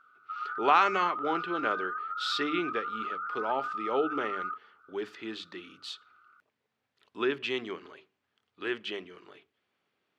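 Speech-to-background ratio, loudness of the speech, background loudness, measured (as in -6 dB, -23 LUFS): 3.5 dB, -32.0 LUFS, -35.5 LUFS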